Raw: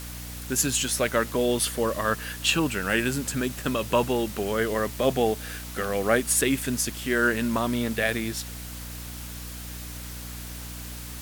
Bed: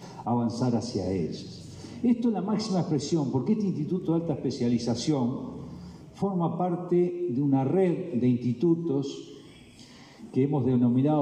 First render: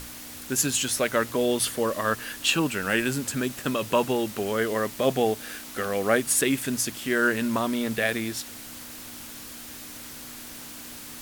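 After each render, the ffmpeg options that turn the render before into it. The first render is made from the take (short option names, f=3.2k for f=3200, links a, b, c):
-af "bandreject=f=60:t=h:w=6,bandreject=f=120:t=h:w=6,bandreject=f=180:t=h:w=6"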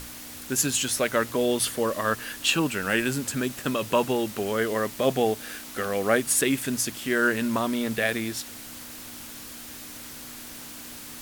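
-af anull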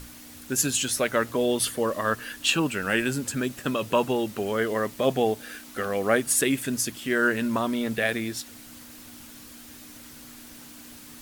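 -af "afftdn=nr=6:nf=-41"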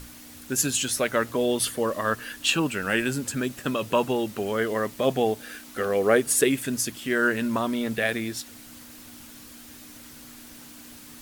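-filter_complex "[0:a]asettb=1/sr,asplit=3[a][b][c];[a]atrim=end=5.804[d];[b]atrim=start=5.8:end=6.49,asetpts=PTS-STARTPTS,afade=t=in:d=0.004:c=qsin,afade=t=out:st=0.686:d=0.004:c=qsin,equalizer=f=430:w=3.2:g=8[e];[c]atrim=start=6.486[f];[d][e]acrossfade=d=0.004:c1=hsin:c2=qsin[g];[g][f]acrossfade=d=0.004:c1=qsin:c2=hsin"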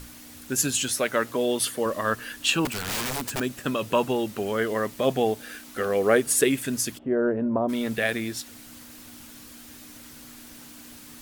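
-filter_complex "[0:a]asettb=1/sr,asplit=3[a][b][c];[a]atrim=end=0.924[d];[b]atrim=start=0.92:end=1.86,asetpts=PTS-STARTPTS,afade=t=in:d=0.004:c=qsin,afade=t=out:st=0.936:d=0.004:c=qsin,highpass=f=160:p=1[e];[c]atrim=start=1.856[f];[d][e]acrossfade=d=0.004:c1=hsin:c2=qsin[g];[g][f]acrossfade=d=0.004:c1=qsin:c2=hsin,asettb=1/sr,asplit=3[h][i][j];[h]atrim=end=2.654[k];[i]atrim=start=2.65:end=3.4,asetpts=PTS-STARTPTS,afade=t=in:d=0.004:c=qsin,afade=t=out:st=0.746:d=0.004:c=qsin,aeval=exprs='(mod(15.8*val(0)+1,2)-1)/15.8':c=same[l];[j]atrim=start=3.396[m];[k][l]acrossfade=d=0.004:c1=hsin:c2=qsin[n];[n][m]acrossfade=d=0.004:c1=qsin:c2=hsin,asplit=3[o][p][q];[o]afade=t=out:st=6.97:d=0.02[r];[p]lowpass=f=650:t=q:w=1.7,afade=t=in:st=6.97:d=0.02,afade=t=out:st=7.68:d=0.02[s];[q]afade=t=in:st=7.68:d=0.02[t];[r][s][t]amix=inputs=3:normalize=0"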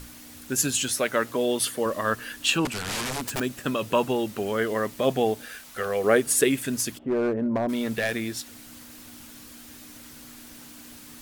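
-filter_complex "[0:a]asettb=1/sr,asplit=3[a][b][c];[a]atrim=end=2.584[d];[b]atrim=start=2.58:end=3.22,asetpts=PTS-STARTPTS,afade=t=in:d=0.004:c=qsin,afade=t=out:st=0.636:d=0.004:c=qsin,lowpass=11k[e];[c]atrim=start=3.216[f];[d][e]acrossfade=d=0.004:c1=hsin:c2=qsin[g];[g][f]acrossfade=d=0.004:c1=qsin:c2=hsin,asettb=1/sr,asplit=3[h][i][j];[h]atrim=end=5.464[k];[i]atrim=start=5.46:end=6.04,asetpts=PTS-STARTPTS,afade=t=in:d=0.004:c=qsin,afade=t=out:st=0.576:d=0.004:c=qsin,equalizer=f=280:t=o:w=0.66:g=-14.5[l];[j]atrim=start=6.036[m];[k][l]acrossfade=d=0.004:c1=hsin:c2=qsin[n];[n][m]acrossfade=d=0.004:c1=qsin:c2=hsin,asettb=1/sr,asplit=3[o][p][q];[o]atrim=end=6.794[r];[p]atrim=start=6.79:end=8.13,asetpts=PTS-STARTPTS,afade=t=in:d=0.004:c=qsin,afade=t=out:st=1.336:d=0.004:c=qsin,volume=20dB,asoftclip=hard,volume=-20dB[s];[q]atrim=start=8.126[t];[r][s]acrossfade=d=0.004:c1=hsin:c2=qsin[u];[u][t]acrossfade=d=0.004:c1=qsin:c2=hsin"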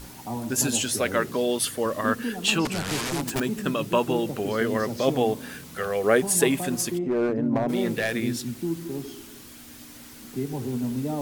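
-filter_complex "[1:a]volume=-5.5dB[a];[0:a][a]amix=inputs=2:normalize=0"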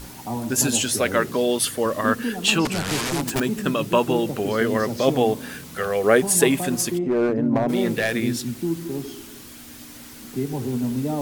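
-af "volume=3.5dB"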